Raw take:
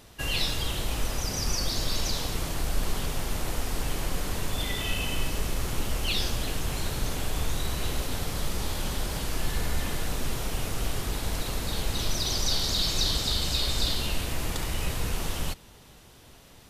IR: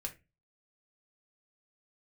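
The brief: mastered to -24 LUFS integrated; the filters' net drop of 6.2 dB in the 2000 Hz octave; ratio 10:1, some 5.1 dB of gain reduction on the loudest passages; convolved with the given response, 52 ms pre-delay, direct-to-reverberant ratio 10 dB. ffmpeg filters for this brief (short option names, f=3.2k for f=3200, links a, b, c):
-filter_complex "[0:a]equalizer=f=2k:t=o:g=-8.5,acompressor=threshold=-26dB:ratio=10,asplit=2[a][b];[1:a]atrim=start_sample=2205,adelay=52[c];[b][c]afir=irnorm=-1:irlink=0,volume=-9dB[d];[a][d]amix=inputs=2:normalize=0,volume=9.5dB"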